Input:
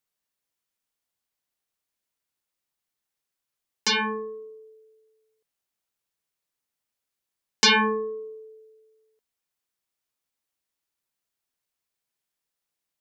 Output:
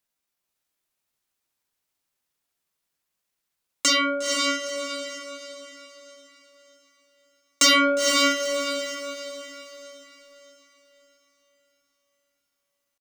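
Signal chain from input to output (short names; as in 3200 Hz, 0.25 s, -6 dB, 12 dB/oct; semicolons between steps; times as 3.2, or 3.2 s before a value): pitch shift +4.5 st; soft clip -16.5 dBFS, distortion -16 dB; diffused feedback echo 0.484 s, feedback 41%, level -3 dB; gain +4 dB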